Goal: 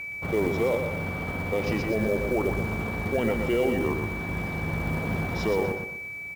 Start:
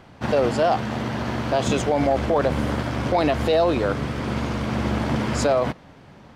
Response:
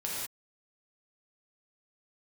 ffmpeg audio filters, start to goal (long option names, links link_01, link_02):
-filter_complex "[0:a]highshelf=frequency=2600:gain=-5,asplit=2[link_01][link_02];[1:a]atrim=start_sample=2205,asetrate=83790,aresample=44100,highshelf=frequency=2200:gain=11.5[link_03];[link_02][link_03]afir=irnorm=-1:irlink=0,volume=-26dB[link_04];[link_01][link_04]amix=inputs=2:normalize=0,asetrate=33038,aresample=44100,atempo=1.33484,aeval=exprs='val(0)+0.0447*sin(2*PI*2300*n/s)':channel_layout=same,acrusher=bits=6:mode=log:mix=0:aa=0.000001,asplit=2[link_05][link_06];[link_06]aecho=0:1:121|242|363|484:0.501|0.175|0.0614|0.0215[link_07];[link_05][link_07]amix=inputs=2:normalize=0,volume=-6dB"